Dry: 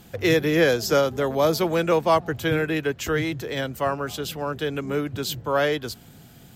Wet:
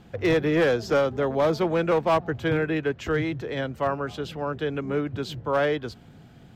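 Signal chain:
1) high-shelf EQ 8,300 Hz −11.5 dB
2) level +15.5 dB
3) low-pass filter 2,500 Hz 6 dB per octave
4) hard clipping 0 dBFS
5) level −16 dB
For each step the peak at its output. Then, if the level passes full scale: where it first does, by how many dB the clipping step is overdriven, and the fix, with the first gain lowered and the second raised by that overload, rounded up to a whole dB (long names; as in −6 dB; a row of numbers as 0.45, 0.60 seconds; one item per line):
−8.5, +7.0, +7.0, 0.0, −16.0 dBFS
step 2, 7.0 dB
step 2 +8.5 dB, step 5 −9 dB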